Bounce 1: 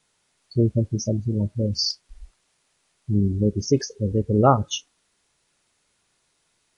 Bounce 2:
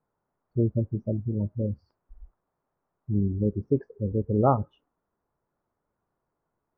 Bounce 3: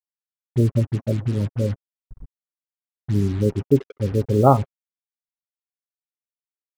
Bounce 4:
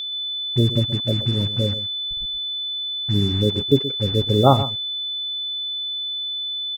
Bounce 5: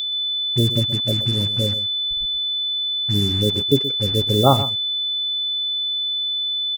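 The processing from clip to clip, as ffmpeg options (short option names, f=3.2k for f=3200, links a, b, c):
-af "lowpass=f=1.2k:w=0.5412,lowpass=f=1.2k:w=1.3066,volume=-4.5dB"
-af "acrusher=bits=6:mix=0:aa=0.5,aecho=1:1:7.4:0.32,volume=5.5dB"
-af "aeval=exprs='val(0)+0.0501*sin(2*PI*3500*n/s)':c=same,aecho=1:1:126:0.211"
-af "crystalizer=i=2.5:c=0,volume=-1dB"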